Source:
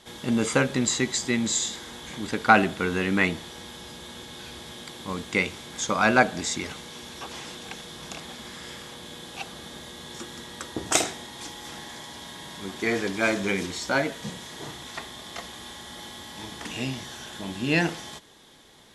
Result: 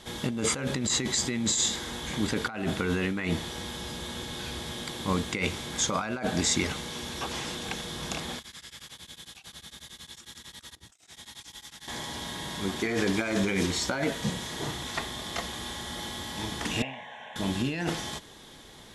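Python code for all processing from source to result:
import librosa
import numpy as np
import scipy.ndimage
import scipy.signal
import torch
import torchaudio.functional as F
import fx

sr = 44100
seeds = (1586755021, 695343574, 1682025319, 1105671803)

y = fx.chain(x, sr, fx.over_compress(threshold_db=-41.0, ratio=-1.0),
    fx.tone_stack(knobs='5-5-5'),
    fx.tremolo_abs(hz=11.0), at=(8.39, 11.88))
y = fx.chain(y, sr, fx.bandpass_edges(low_hz=400.0, high_hz=2200.0),
    fx.fixed_phaser(hz=1300.0, stages=6), at=(16.82, 17.36))
y = fx.low_shelf(y, sr, hz=120.0, db=7.0)
y = fx.over_compress(y, sr, threshold_db=-28.0, ratio=-1.0)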